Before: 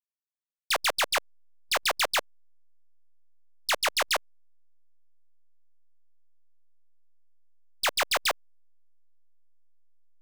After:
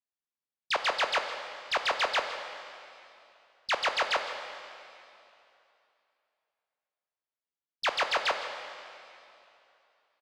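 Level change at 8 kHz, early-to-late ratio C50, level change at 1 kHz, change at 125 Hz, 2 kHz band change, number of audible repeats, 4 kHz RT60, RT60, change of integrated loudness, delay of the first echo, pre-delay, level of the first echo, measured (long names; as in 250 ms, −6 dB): −12.5 dB, 6.5 dB, +0.5 dB, can't be measured, −1.0 dB, 1, 2.6 s, 2.8 s, −3.0 dB, 163 ms, 7 ms, −14.5 dB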